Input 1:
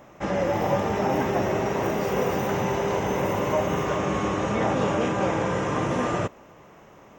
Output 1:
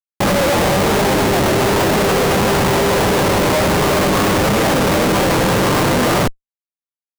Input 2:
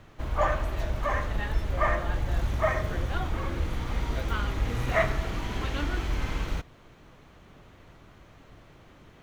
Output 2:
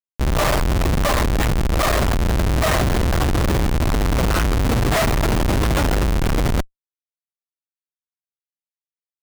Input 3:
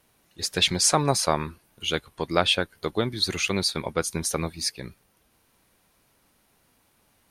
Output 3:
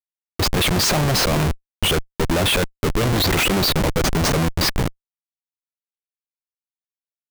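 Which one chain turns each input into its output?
low-pass filter 4,100 Hz 12 dB per octave
in parallel at −1 dB: compressor whose output falls as the input rises −27 dBFS, ratio −0.5
on the sum: comparator with hysteresis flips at −29 dBFS
normalise the peak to −12 dBFS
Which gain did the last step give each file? +7.0, +7.0, +8.0 decibels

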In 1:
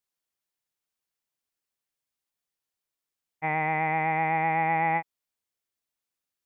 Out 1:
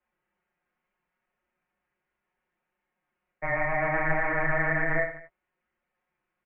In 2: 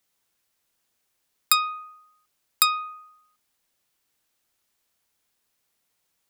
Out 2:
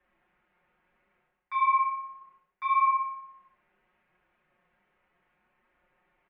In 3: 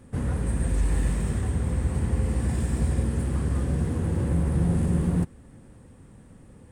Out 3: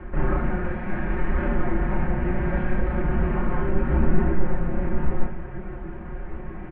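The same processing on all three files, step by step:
comb filter 5.6 ms, depth 85%
reversed playback
downward compressor 6 to 1, threshold −29 dBFS
reversed playback
brickwall limiter −27 dBFS
flanger 0.7 Hz, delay 3.8 ms, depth 9.7 ms, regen +19%
on a send: reverse bouncing-ball delay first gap 30 ms, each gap 1.25×, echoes 5
on the sum: single-sideband voice off tune −170 Hz 150–2,500 Hz
loudness normalisation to −27 LKFS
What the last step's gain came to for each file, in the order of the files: +13.0, +10.5, +19.0 decibels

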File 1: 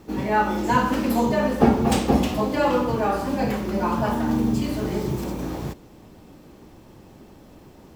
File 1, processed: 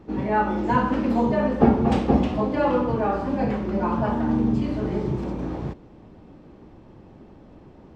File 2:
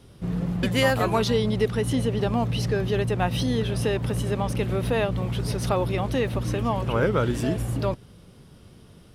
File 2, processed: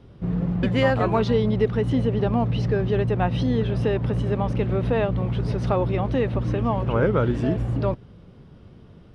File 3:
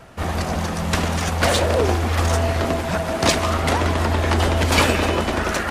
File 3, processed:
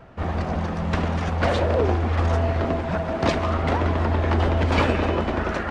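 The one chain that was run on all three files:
head-to-tape spacing loss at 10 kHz 26 dB
loudness normalisation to −23 LKFS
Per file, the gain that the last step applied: +1.0, +3.0, −1.0 decibels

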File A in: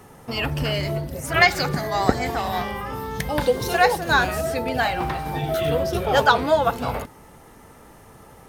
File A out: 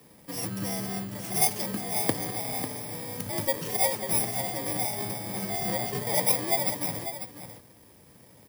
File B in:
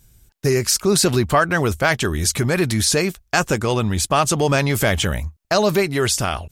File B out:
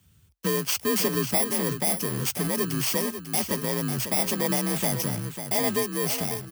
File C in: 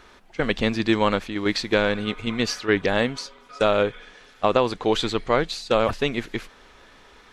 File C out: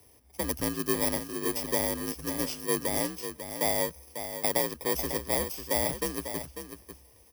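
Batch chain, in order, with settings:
samples in bit-reversed order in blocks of 32 samples
single-tap delay 546 ms −9.5 dB
frequency shifter +48 Hz
level −8 dB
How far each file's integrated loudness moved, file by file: −5.5, −6.5, −6.5 LU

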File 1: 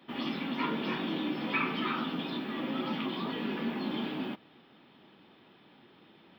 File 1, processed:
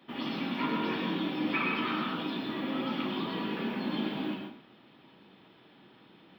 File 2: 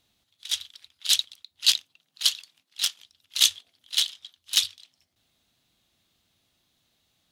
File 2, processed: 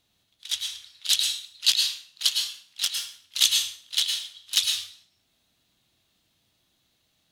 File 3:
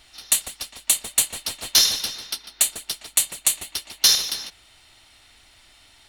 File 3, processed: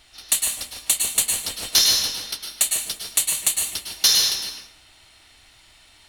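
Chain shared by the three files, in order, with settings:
dense smooth reverb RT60 0.53 s, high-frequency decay 0.85×, pre-delay 95 ms, DRR 2.5 dB
level −1 dB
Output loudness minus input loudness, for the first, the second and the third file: +1.0, 0.0, +1.0 LU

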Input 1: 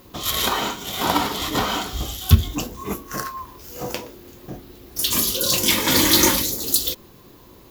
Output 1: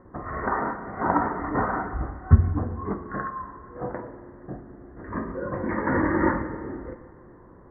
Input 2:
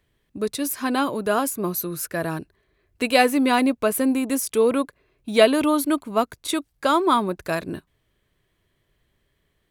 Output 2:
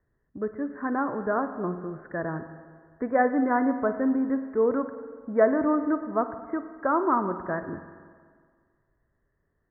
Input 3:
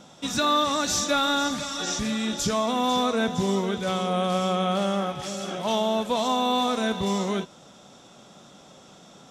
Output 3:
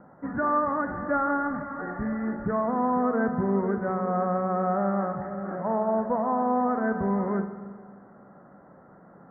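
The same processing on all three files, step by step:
Butterworth low-pass 1,900 Hz 96 dB per octave
spring reverb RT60 1.8 s, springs 45/56 ms, chirp 65 ms, DRR 9.5 dB
loudness normalisation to −27 LKFS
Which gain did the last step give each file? −2.0, −4.5, −1.5 decibels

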